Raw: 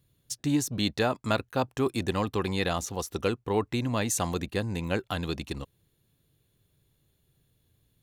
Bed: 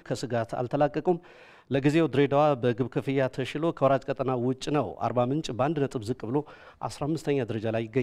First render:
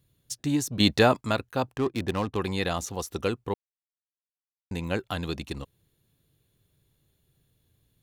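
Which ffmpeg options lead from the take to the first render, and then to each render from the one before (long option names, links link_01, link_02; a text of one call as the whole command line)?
ffmpeg -i in.wav -filter_complex "[0:a]asettb=1/sr,asplit=3[link_01][link_02][link_03];[link_01]atrim=end=0.804[link_04];[link_02]atrim=start=0.8:end=1.21,asetpts=PTS-STARTPTS,afade=type=in:duration=0.004:curve=qsin,afade=type=out:start_time=0.406:duration=0.004:curve=qsin,acontrast=81[link_05];[link_03]atrim=start=1.206[link_06];[link_04][link_05]acrossfade=duration=0.004:curve1=hsin:curve2=qsin[link_07];[link_07][link_06]acrossfade=duration=0.004:curve1=qsin:curve2=hsin,asettb=1/sr,asplit=3[link_08][link_09][link_10];[link_08]atrim=end=1.734[link_11];[link_09]atrim=start=1.73:end=2.37,asetpts=PTS-STARTPTS,afade=type=in:duration=0.004:curve=qsin,afade=type=out:start_time=0.636:duration=0.004:curve=qsin,adynamicsmooth=sensitivity=8:basefreq=800[link_12];[link_10]atrim=start=2.366[link_13];[link_11][link_12]acrossfade=duration=0.004:curve1=hsin:curve2=qsin[link_14];[link_14][link_13]acrossfade=duration=0.004:curve1=qsin:curve2=hsin,asplit=3[link_15][link_16][link_17];[link_15]atrim=end=3.54,asetpts=PTS-STARTPTS,afade=type=out:start_time=3.536:duration=0.004:curve=hsin[link_18];[link_16]atrim=start=3.54:end=4.71,asetpts=PTS-STARTPTS,volume=0[link_19];[link_17]atrim=start=4.71,asetpts=PTS-STARTPTS,afade=type=in:duration=0.004:curve=hsin[link_20];[link_18][link_19][link_20]concat=n=3:v=0:a=1" out.wav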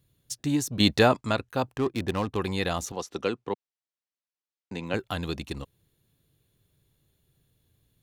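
ffmpeg -i in.wav -filter_complex "[0:a]asettb=1/sr,asplit=3[link_01][link_02][link_03];[link_01]atrim=end=1.084[link_04];[link_02]atrim=start=1.08:end=1.5,asetpts=PTS-STARTPTS,afade=type=in:duration=0.004:curve=qsin,afade=type=out:start_time=0.416:duration=0.004:curve=qsin,lowpass=9300[link_05];[link_03]atrim=start=1.496[link_06];[link_04][link_05]acrossfade=duration=0.004:curve1=hsin:curve2=qsin[link_07];[link_07][link_06]acrossfade=duration=0.004:curve1=qsin:curve2=hsin,asettb=1/sr,asplit=3[link_08][link_09][link_10];[link_08]atrim=end=2.924[link_11];[link_09]atrim=start=2.92:end=4.94,asetpts=PTS-STARTPTS,afade=type=in:duration=0.004:curve=qsin,afade=type=out:start_time=2.016:duration=0.004:curve=qsin,acrossover=split=160 7300:gain=0.2 1 0.112[link_12][link_13][link_14];[link_12][link_13][link_14]amix=inputs=3:normalize=0[link_15];[link_10]atrim=start=4.936[link_16];[link_11][link_15]acrossfade=duration=0.004:curve1=hsin:curve2=qsin[link_17];[link_17][link_16]acrossfade=duration=0.004:curve1=qsin:curve2=hsin" out.wav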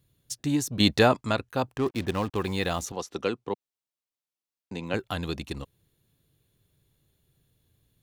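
ffmpeg -i in.wav -filter_complex "[0:a]asettb=1/sr,asplit=3[link_01][link_02][link_03];[link_01]atrim=end=1.864[link_04];[link_02]atrim=start=1.86:end=2.82,asetpts=PTS-STARTPTS,afade=type=in:duration=0.004:curve=qsin,afade=type=out:start_time=0.956:duration=0.004:curve=qsin,acrusher=bits=7:mix=0:aa=0.5[link_05];[link_03]atrim=start=2.816[link_06];[link_04][link_05]acrossfade=duration=0.004:curve1=hsin:curve2=qsin[link_07];[link_07][link_06]acrossfade=duration=0.004:curve1=qsin:curve2=hsin,asettb=1/sr,asplit=3[link_08][link_09][link_10];[link_08]atrim=end=3.354[link_11];[link_09]atrim=start=3.35:end=4.88,asetpts=PTS-STARTPTS,afade=type=in:duration=0.004:curve=qsin,afade=type=out:start_time=1.526:duration=0.004:curve=qsin,equalizer=frequency=1700:width_type=o:width=0.77:gain=-4.5[link_12];[link_10]atrim=start=4.876[link_13];[link_11][link_12]acrossfade=duration=0.004:curve1=hsin:curve2=qsin[link_14];[link_14][link_13]acrossfade=duration=0.004:curve1=qsin:curve2=hsin" out.wav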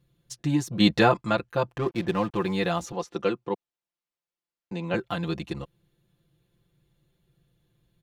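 ffmpeg -i in.wav -af "lowpass=frequency=2800:poles=1,aecho=1:1:5.8:0.86" out.wav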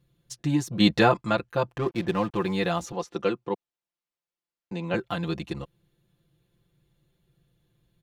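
ffmpeg -i in.wav -af anull out.wav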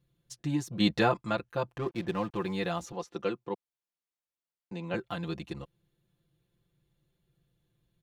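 ffmpeg -i in.wav -af "volume=-6dB" out.wav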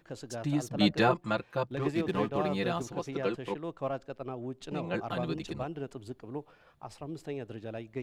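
ffmpeg -i in.wav -i bed.wav -filter_complex "[1:a]volume=-11.5dB[link_01];[0:a][link_01]amix=inputs=2:normalize=0" out.wav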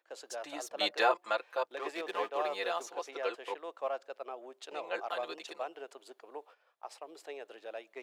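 ffmpeg -i in.wav -af "agate=range=-10dB:threshold=-51dB:ratio=16:detection=peak,highpass=frequency=490:width=0.5412,highpass=frequency=490:width=1.3066" out.wav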